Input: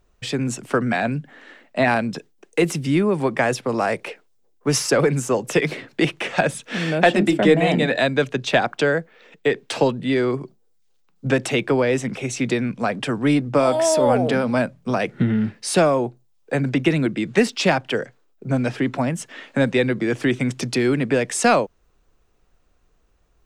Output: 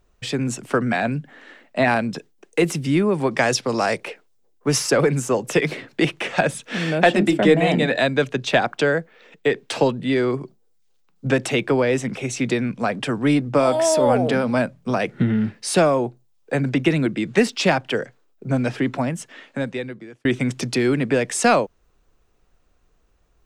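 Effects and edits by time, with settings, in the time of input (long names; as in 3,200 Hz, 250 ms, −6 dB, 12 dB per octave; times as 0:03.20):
0:03.31–0:03.98: parametric band 5,200 Hz +10 dB 1.3 octaves
0:18.88–0:20.25: fade out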